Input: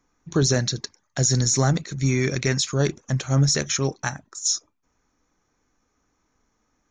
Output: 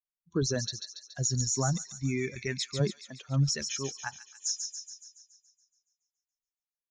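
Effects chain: per-bin expansion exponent 2; 2.79–3.28 resonant high-pass 150 Hz -> 510 Hz, resonance Q 3.5; thin delay 0.141 s, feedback 58%, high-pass 3100 Hz, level -5 dB; gain -5.5 dB

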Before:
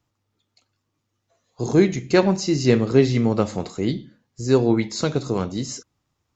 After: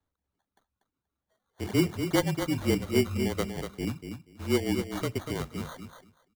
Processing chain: sample-and-hold 17×; frequency shift -31 Hz; reverb removal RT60 0.85 s; on a send: feedback echo 0.24 s, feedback 16%, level -7.5 dB; on the sum: gain -8.5 dB

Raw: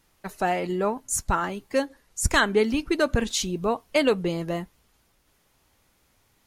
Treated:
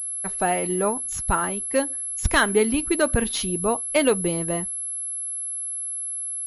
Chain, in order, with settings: pulse-width modulation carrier 11000 Hz; gain +1.5 dB

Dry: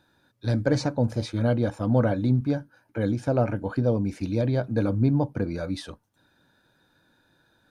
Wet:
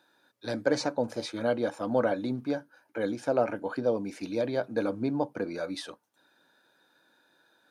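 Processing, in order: HPF 350 Hz 12 dB/oct

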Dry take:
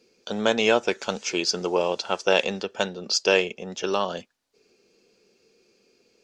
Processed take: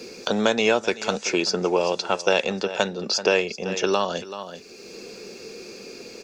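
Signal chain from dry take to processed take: notch 3100 Hz, Q 9.8; echo 0.382 s -18.5 dB; three-band squash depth 70%; gain +2 dB

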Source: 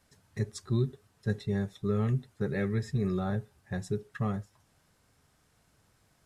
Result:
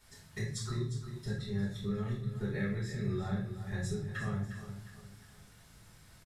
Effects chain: compressor, threshold -40 dBFS, peak gain reduction 16 dB; bell 420 Hz -7.5 dB 2.7 oct; feedback echo 0.355 s, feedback 40%, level -11 dB; reverb RT60 0.55 s, pre-delay 5 ms, DRR -5 dB; gain +2.5 dB

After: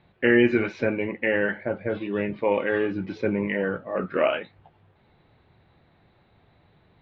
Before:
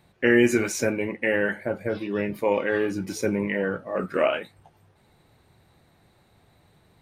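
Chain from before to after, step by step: steep low-pass 3800 Hz 36 dB/oct

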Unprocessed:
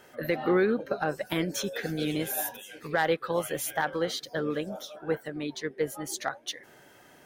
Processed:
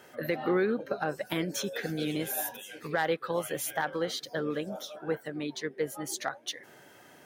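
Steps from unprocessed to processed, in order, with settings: HPF 86 Hz; in parallel at -2 dB: compressor, threshold -34 dBFS, peak gain reduction 13.5 dB; on the sum: gain -4.5 dB

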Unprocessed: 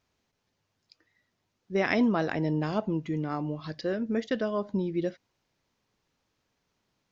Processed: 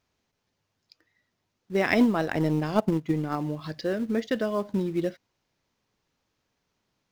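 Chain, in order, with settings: in parallel at -12 dB: companded quantiser 4-bit; 1.9–3.37 on the sum: transient shaper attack +8 dB, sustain -6 dB

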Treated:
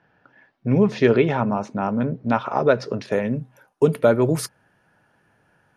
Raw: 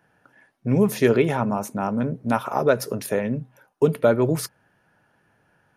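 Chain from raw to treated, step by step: LPF 4900 Hz 24 dB/oct, from 3.12 s 12000 Hz; gain +1.5 dB

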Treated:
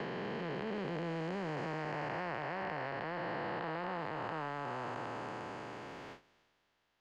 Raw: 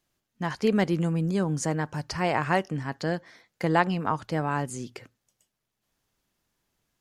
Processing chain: time blur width 1.2 s; gate with hold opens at -59 dBFS; three-band isolator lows -12 dB, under 390 Hz, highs -24 dB, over 4500 Hz; transient shaper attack -9 dB, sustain +4 dB; three-band squash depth 100%; gain -1.5 dB

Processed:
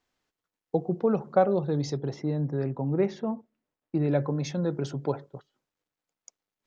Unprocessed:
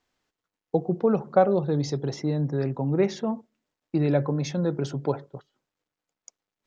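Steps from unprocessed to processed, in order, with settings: 1.95–4.11 LPF 2600 Hz -> 1700 Hz 6 dB/oct; gain -2.5 dB

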